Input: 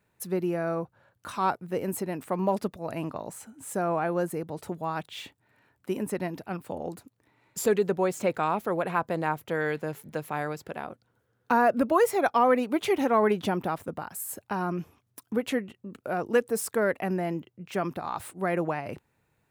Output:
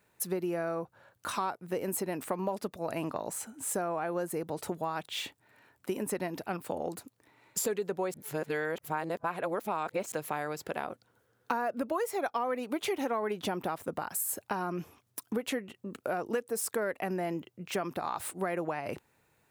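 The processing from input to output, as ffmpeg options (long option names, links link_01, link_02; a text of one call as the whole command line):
ffmpeg -i in.wav -filter_complex "[0:a]asplit=3[link_01][link_02][link_03];[link_01]atrim=end=8.142[link_04];[link_02]atrim=start=8.138:end=10.122,asetpts=PTS-STARTPTS,areverse[link_05];[link_03]atrim=start=10.118[link_06];[link_04][link_05]acrossfade=duration=0.004:curve1=hsin:curve2=hsin[link_07];[link_07][link_06]acrossfade=duration=0.004:curve1=hsin:curve2=hsin,bass=frequency=250:gain=-6,treble=frequency=4000:gain=3,acompressor=threshold=-33dB:ratio=6,volume=3.5dB" out.wav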